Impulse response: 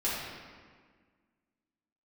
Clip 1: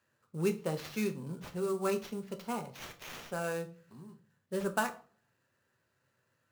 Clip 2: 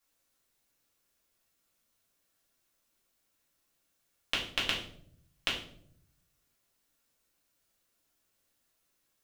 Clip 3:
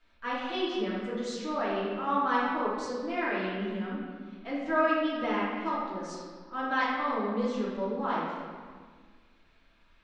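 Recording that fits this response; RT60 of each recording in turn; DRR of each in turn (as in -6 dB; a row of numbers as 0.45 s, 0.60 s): 3; 0.45 s, 0.65 s, 1.7 s; 7.5 dB, -5.0 dB, -9.5 dB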